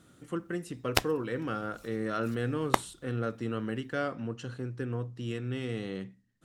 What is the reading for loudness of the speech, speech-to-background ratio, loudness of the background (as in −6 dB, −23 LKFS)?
−35.0 LKFS, −3.0 dB, −32.0 LKFS